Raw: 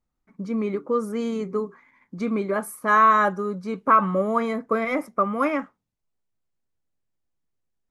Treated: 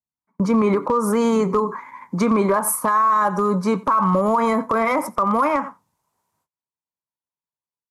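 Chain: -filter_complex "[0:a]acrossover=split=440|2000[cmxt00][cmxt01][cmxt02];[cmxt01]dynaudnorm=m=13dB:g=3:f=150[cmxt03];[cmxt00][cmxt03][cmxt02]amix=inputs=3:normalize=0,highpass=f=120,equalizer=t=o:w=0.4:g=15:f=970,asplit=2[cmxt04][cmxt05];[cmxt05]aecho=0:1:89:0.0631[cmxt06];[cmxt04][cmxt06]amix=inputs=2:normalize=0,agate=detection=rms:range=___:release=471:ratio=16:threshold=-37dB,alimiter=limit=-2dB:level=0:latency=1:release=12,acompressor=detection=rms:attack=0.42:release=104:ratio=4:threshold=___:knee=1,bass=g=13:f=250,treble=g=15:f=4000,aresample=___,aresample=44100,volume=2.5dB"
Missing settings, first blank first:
-27dB, -18dB, 32000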